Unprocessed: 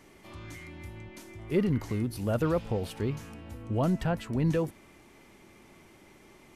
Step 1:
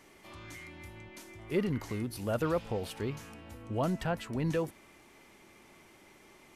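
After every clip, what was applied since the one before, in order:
low-shelf EQ 360 Hz −7 dB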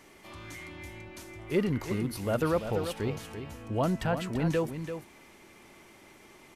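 single-tap delay 339 ms −9 dB
level +3 dB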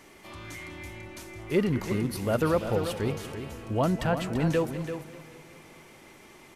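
feedback echo with a swinging delay time 195 ms, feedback 63%, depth 99 cents, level −15.5 dB
level +2.5 dB

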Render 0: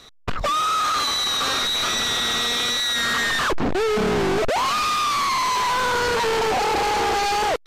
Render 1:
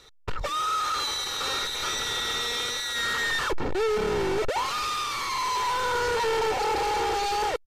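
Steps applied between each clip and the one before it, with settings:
comb filter 2.2 ms, depth 52%
level −7 dB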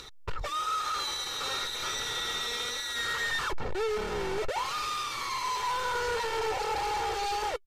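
dynamic equaliser 270 Hz, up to −6 dB, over −43 dBFS, Q 1.5
upward compression, threshold −33 dBFS
flanger 0.29 Hz, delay 0.7 ms, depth 7.7 ms, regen −59%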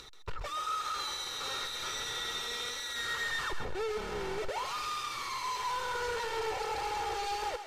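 feedback echo with a high-pass in the loop 132 ms, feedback 32%, level −8 dB
level −4.5 dB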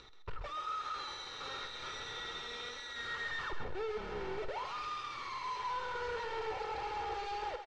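high-frequency loss of the air 160 metres
double-tracking delay 50 ms −13 dB
level −3.5 dB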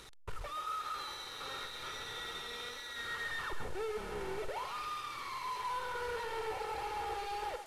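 linear delta modulator 64 kbit/s, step −48 dBFS

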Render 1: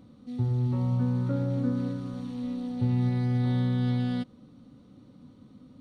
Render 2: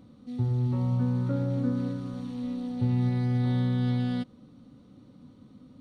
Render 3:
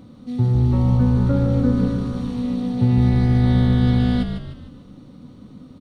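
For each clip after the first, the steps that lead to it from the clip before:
no processing that can be heard
echo with shifted repeats 151 ms, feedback 44%, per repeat −54 Hz, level −7 dB; level +9 dB

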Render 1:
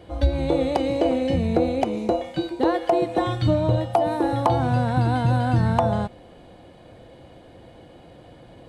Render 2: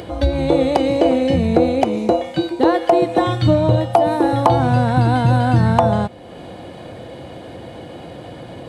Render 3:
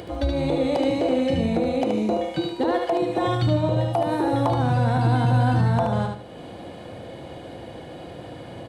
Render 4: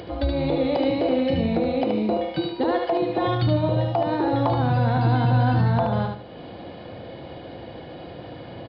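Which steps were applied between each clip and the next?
high-pass filter 79 Hz; in parallel at +0.5 dB: upward compression, threshold −26 dBFS
brickwall limiter −9.5 dBFS, peak gain reduction 8 dB; repeating echo 75 ms, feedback 31%, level −4.5 dB; level −5 dB
downsampling to 11,025 Hz

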